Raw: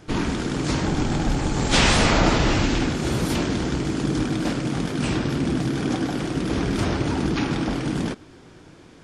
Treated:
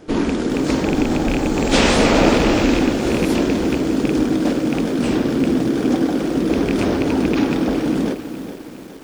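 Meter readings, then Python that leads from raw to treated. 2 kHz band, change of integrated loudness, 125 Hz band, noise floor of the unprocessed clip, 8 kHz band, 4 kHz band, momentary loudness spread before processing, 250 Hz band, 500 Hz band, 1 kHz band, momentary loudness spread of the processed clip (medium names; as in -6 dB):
+2.0 dB, +5.0 dB, -1.5 dB, -48 dBFS, +0.5 dB, +1.0 dB, 7 LU, +7.0 dB, +8.0 dB, +3.0 dB, 6 LU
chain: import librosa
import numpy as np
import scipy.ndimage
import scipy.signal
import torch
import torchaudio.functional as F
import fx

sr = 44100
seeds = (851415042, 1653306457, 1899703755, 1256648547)

y = fx.rattle_buzz(x, sr, strikes_db=-19.0, level_db=-13.0)
y = fx.graphic_eq_10(y, sr, hz=(125, 250, 500), db=(-6, 7, 8))
y = fx.echo_crushed(y, sr, ms=412, feedback_pct=55, bits=6, wet_db=-11.0)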